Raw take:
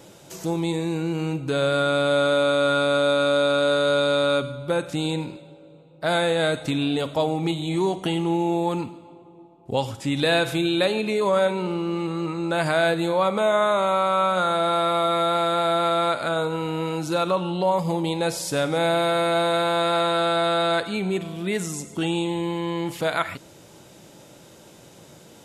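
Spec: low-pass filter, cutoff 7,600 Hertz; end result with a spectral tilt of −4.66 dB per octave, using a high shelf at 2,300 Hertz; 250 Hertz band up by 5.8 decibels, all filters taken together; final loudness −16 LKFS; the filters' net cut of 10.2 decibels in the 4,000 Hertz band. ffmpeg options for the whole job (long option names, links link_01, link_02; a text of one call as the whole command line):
ffmpeg -i in.wav -af "lowpass=7600,equalizer=frequency=250:width_type=o:gain=9,highshelf=frequency=2300:gain=-3.5,equalizer=frequency=4000:width_type=o:gain=-8.5,volume=5dB" out.wav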